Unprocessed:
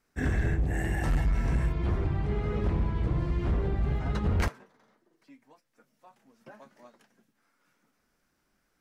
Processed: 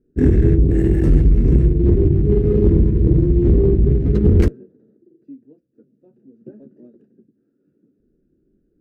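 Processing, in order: Wiener smoothing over 41 samples; resonant low shelf 550 Hz +12.5 dB, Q 3; added harmonics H 3 -28 dB, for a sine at -4 dBFS; gain +1.5 dB

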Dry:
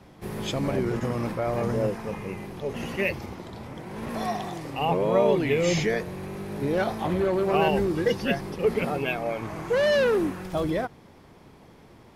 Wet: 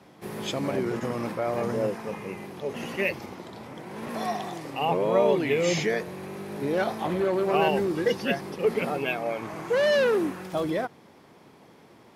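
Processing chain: Bessel high-pass 190 Hz, order 2

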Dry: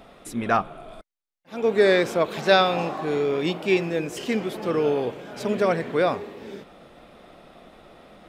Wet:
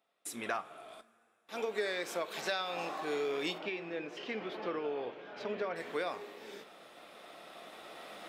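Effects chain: recorder AGC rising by 5.2 dB/s; HPF 470 Hz 6 dB/oct; gate with hold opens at -40 dBFS; tilt +1.5 dB/oct; compressor 5:1, threshold -24 dBFS, peak gain reduction 10.5 dB; 3.58–5.76 air absorption 270 m; two-slope reverb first 0.29 s, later 3.4 s, from -22 dB, DRR 11.5 dB; gain -8 dB

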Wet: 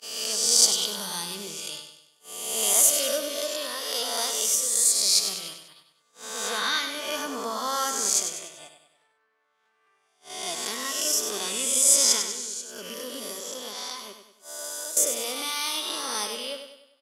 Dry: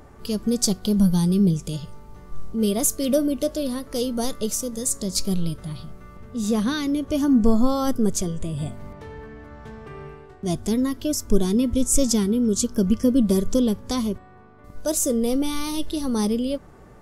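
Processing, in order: spectral swells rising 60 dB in 1.32 s; HPF 1200 Hz 12 dB/oct; gate -41 dBFS, range -25 dB; high shelf 4600 Hz -5 dB; 12.18–14.97 compressor 10:1, threshold -36 dBFS, peak gain reduction 15.5 dB; feedback echo 98 ms, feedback 46%, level -8 dB; gain +3.5 dB

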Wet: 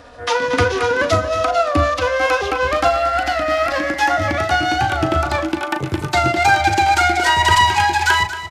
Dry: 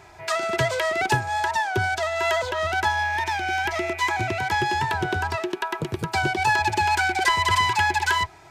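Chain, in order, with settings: gliding pitch shift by -5.5 st ending unshifted; doubler 38 ms -10.5 dB; de-hum 56.74 Hz, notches 5; on a send: echo 0.23 s -12.5 dB; on the sum: gain +7.5 dB

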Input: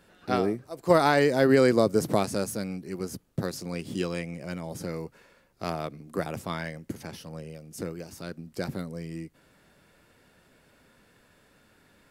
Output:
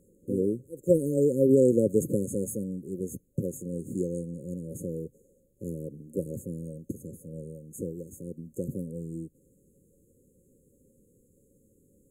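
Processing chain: FFT band-reject 560–6400 Hz

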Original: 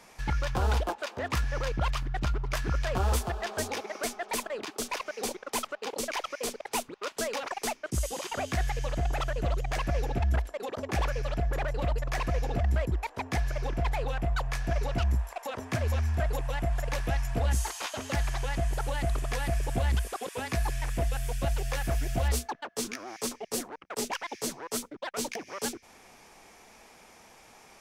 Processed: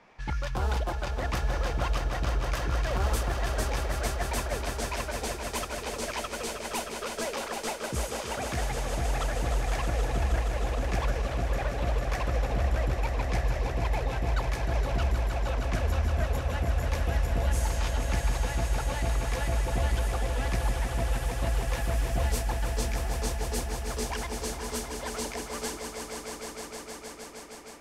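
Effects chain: low-pass opened by the level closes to 2700 Hz, open at -27 dBFS; swelling echo 0.156 s, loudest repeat 5, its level -9 dB; gain -2.5 dB

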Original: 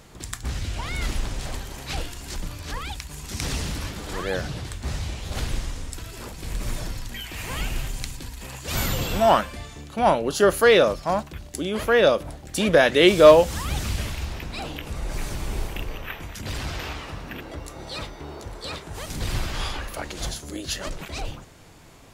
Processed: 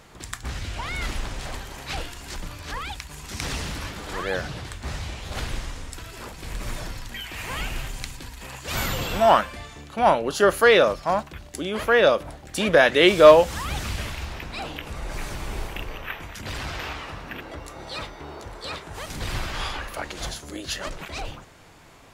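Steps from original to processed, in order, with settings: bell 1400 Hz +6 dB 3 oct; gain -3.5 dB

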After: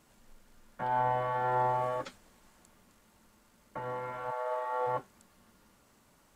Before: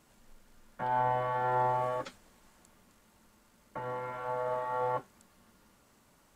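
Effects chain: 4.3–4.86 HPF 640 Hz -> 280 Hz 24 dB/oct

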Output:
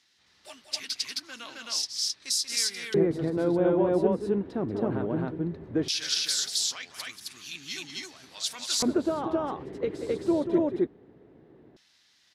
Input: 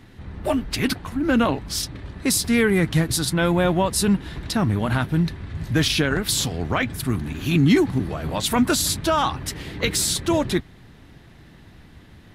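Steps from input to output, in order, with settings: loudspeakers at several distances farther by 64 m -9 dB, 91 m 0 dB; LFO band-pass square 0.17 Hz 410–5400 Hz

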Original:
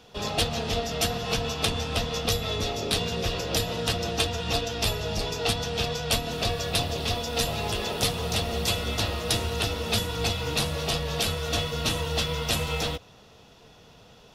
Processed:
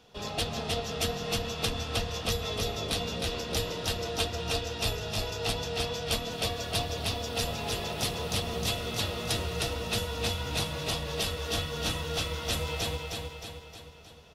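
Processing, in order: feedback echo 0.311 s, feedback 53%, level -4 dB; gain -6 dB

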